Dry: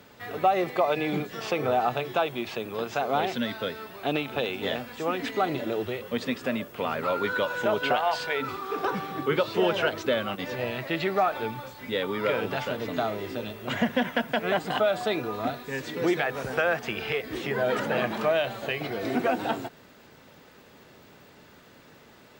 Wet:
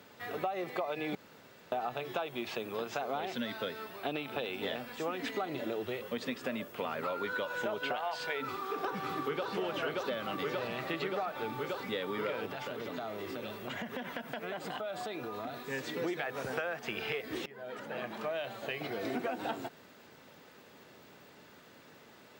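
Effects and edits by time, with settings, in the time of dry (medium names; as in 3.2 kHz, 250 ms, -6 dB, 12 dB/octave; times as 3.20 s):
1.15–1.72 s: room tone
3.99–4.94 s: band-stop 6.6 kHz
8.45–9.51 s: echo throw 580 ms, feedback 75%, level -1 dB
12.46–15.70 s: compression, threshold -32 dBFS
17.46–19.25 s: fade in linear, from -22.5 dB
whole clip: high-pass 150 Hz 6 dB/octave; compression, threshold -29 dBFS; trim -3 dB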